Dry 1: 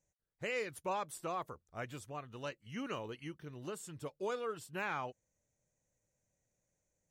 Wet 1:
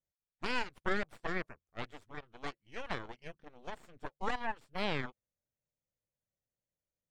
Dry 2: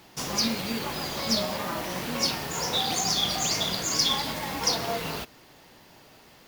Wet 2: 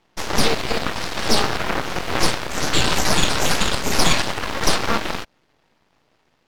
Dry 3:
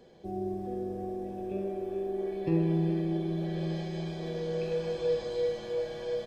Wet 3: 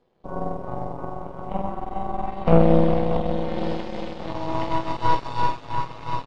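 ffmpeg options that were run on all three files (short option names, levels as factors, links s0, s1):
-af "aeval=exprs='0.355*(cos(1*acos(clip(val(0)/0.355,-1,1)))-cos(1*PI/2))+0.0562*(cos(7*acos(clip(val(0)/0.355,-1,1)))-cos(7*PI/2))+0.126*(cos(8*acos(clip(val(0)/0.355,-1,1)))-cos(8*PI/2))':c=same,aemphasis=mode=reproduction:type=50fm,volume=2.24"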